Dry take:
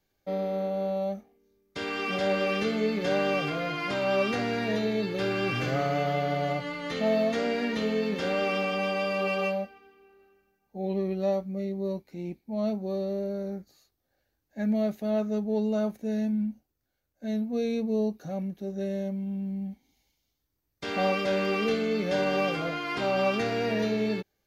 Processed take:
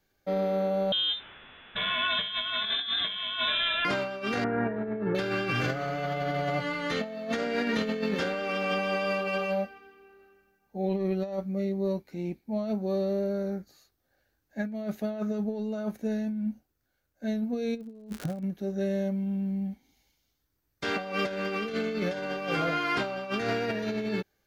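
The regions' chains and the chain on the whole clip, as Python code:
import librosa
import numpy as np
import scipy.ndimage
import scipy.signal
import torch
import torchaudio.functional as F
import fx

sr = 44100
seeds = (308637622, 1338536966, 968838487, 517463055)

y = fx.chain(x, sr, fx.crossing_spikes(level_db=-28.5),
    fx.freq_invert(carrier_hz=3800), at=(0.92, 3.85))
y = fx.chain(y, sr, fx.lowpass(hz=1600.0, slope=24),
    fx.over_compress(threshold_db=-31.0, ratio=-0.5), at=(4.44, 5.15))
y = fx.lowpass(y, sr, hz=4200.0, slope=12, at=(17.75, 18.42), fade=0.02)
y = fx.low_shelf(y, sr, hz=370.0, db=11.0, at=(17.75, 18.42), fade=0.02)
y = fx.dmg_crackle(y, sr, seeds[0], per_s=120.0, level_db=-29.0, at=(17.75, 18.42), fade=0.02)
y = fx.peak_eq(y, sr, hz=1500.0, db=5.0, octaves=0.53)
y = fx.over_compress(y, sr, threshold_db=-29.0, ratio=-0.5)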